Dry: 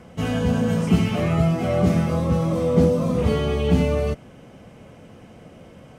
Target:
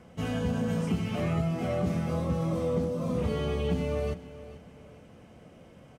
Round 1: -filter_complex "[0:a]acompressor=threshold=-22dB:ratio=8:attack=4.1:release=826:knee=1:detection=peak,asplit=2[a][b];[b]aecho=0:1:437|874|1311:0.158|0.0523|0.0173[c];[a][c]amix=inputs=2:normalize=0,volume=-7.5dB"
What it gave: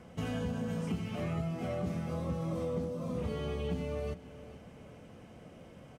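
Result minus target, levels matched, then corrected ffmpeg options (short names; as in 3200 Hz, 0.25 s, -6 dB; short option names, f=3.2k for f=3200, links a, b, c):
compressor: peak gain reduction +6.5 dB
-filter_complex "[0:a]acompressor=threshold=-14.5dB:ratio=8:attack=4.1:release=826:knee=1:detection=peak,asplit=2[a][b];[b]aecho=0:1:437|874|1311:0.158|0.0523|0.0173[c];[a][c]amix=inputs=2:normalize=0,volume=-7.5dB"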